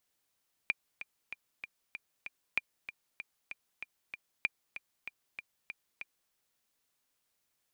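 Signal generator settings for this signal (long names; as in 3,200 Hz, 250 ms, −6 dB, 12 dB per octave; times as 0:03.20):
click track 192 BPM, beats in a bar 6, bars 3, 2,390 Hz, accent 12.5 dB −15.5 dBFS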